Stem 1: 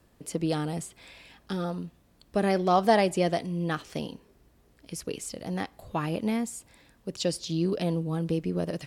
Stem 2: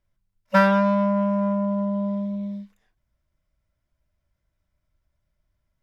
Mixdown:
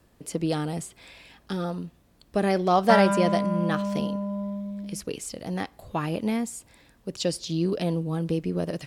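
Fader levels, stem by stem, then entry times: +1.5, −5.5 decibels; 0.00, 2.35 seconds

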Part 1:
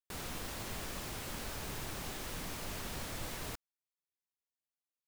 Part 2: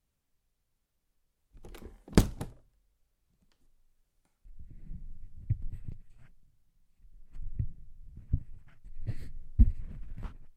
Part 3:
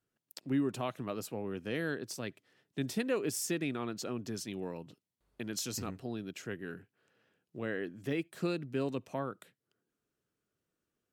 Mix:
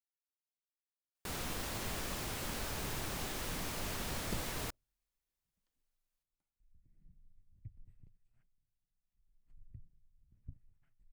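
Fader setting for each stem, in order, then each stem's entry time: +2.0 dB, −19.5 dB, muted; 1.15 s, 2.15 s, muted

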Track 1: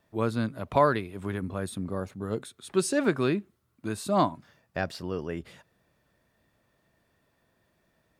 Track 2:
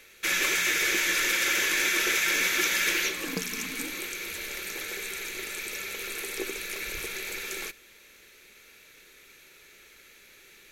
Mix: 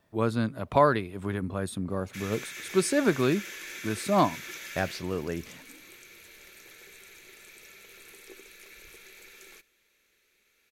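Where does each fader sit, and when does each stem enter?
+1.0, −15.5 decibels; 0.00, 1.90 seconds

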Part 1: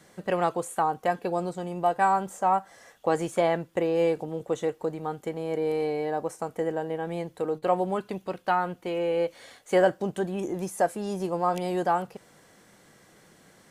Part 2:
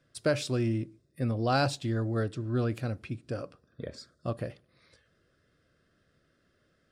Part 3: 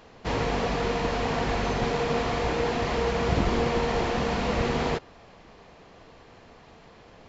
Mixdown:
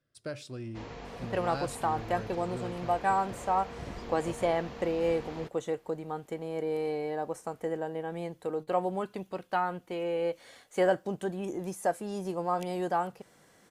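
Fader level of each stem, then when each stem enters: −4.5, −11.5, −17.0 decibels; 1.05, 0.00, 0.50 seconds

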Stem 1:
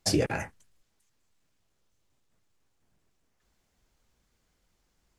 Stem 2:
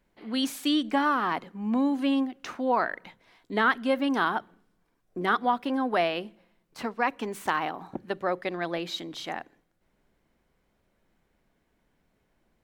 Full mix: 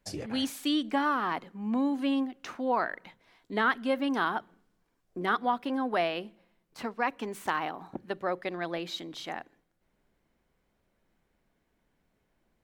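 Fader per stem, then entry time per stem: −13.0, −3.0 decibels; 0.00, 0.00 seconds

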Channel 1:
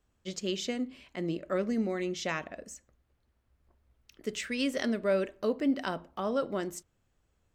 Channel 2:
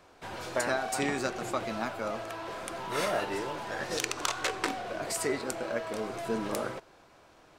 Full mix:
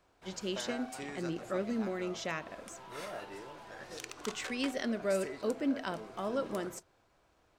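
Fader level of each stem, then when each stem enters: −4.0, −12.5 decibels; 0.00, 0.00 seconds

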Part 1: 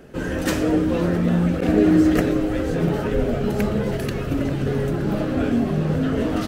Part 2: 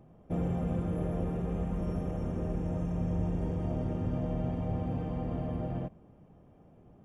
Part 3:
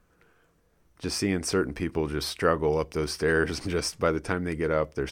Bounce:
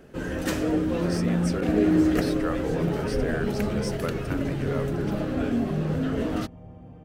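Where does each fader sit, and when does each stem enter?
−5.0, −12.0, −8.0 decibels; 0.00, 1.95, 0.00 seconds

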